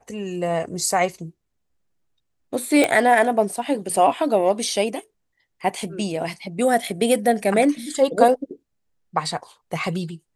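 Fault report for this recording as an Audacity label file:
2.840000	2.840000	pop -5 dBFS

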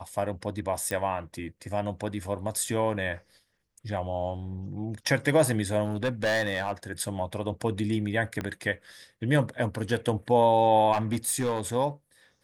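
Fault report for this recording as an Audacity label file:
0.910000	0.910000	pop -16 dBFS
5.850000	6.720000	clipped -22 dBFS
8.410000	8.410000	pop -18 dBFS
10.920000	11.610000	clipped -22 dBFS

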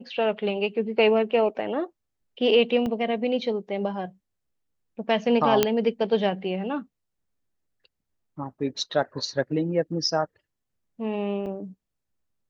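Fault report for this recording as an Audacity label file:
2.860000	2.860000	dropout 3.5 ms
5.630000	5.630000	pop -4 dBFS
11.460000	11.460000	dropout 3.3 ms

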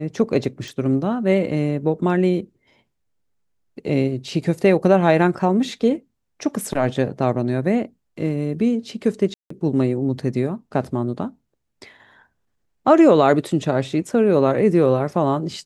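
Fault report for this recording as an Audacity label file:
0.680000	0.680000	pop
9.340000	9.500000	dropout 164 ms

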